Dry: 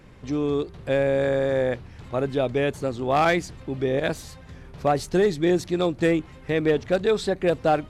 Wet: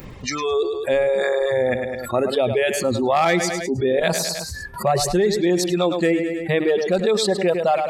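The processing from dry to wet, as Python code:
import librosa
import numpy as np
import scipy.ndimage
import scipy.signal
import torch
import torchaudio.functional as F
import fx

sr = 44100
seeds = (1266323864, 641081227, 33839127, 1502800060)

y = fx.noise_reduce_blind(x, sr, reduce_db=30)
y = fx.notch(y, sr, hz=1500.0, q=7.7)
y = fx.dereverb_blind(y, sr, rt60_s=1.9)
y = fx.echo_feedback(y, sr, ms=105, feedback_pct=36, wet_db=-16.5)
y = fx.env_flatten(y, sr, amount_pct=70)
y = F.gain(torch.from_numpy(y), 1.5).numpy()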